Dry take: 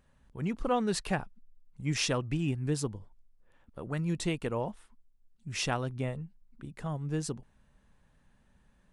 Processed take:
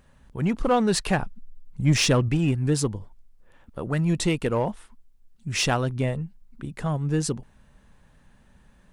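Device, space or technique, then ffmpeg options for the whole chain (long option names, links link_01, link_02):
parallel distortion: -filter_complex "[0:a]asettb=1/sr,asplit=3[link_01][link_02][link_03];[link_01]atrim=end=1.224[link_04];[link_02]atrim=start=1.22:end=2.29,asetpts=PTS-STARTPTS,afade=type=in:duration=0.004:curve=qsin,afade=type=out:start_time=1.066:duration=0.004:curve=qsin,lowshelf=frequency=360:gain=6[link_05];[link_03]atrim=start=2.286[link_06];[link_04][link_05]acrossfade=duration=0.004:curve1=hsin:curve2=qsin[link_07];[link_07][link_06]acrossfade=duration=0.004:curve1=qsin:curve2=hsin,asplit=2[link_08][link_09];[link_09]asoftclip=type=hard:threshold=-29.5dB,volume=-4dB[link_10];[link_08][link_10]amix=inputs=2:normalize=0,volume=5dB"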